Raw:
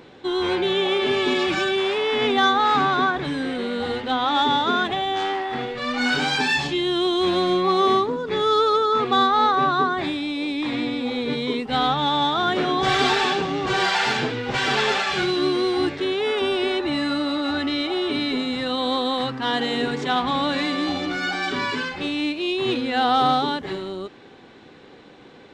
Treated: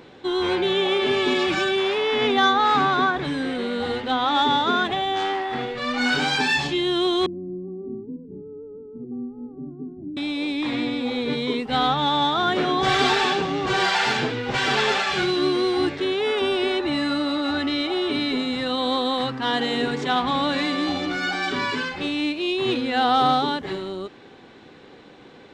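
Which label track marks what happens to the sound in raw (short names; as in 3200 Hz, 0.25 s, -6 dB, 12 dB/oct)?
1.790000	2.640000	notch 7900 Hz, Q 7.9
7.260000	10.170000	ladder low-pass 310 Hz, resonance 45%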